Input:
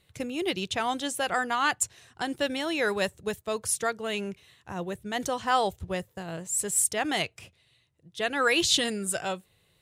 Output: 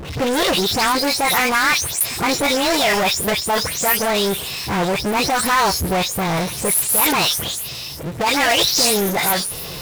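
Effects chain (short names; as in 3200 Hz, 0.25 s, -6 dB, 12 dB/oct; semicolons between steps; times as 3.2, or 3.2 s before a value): spectral delay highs late, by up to 0.198 s; power-law curve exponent 0.35; formant shift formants +5 st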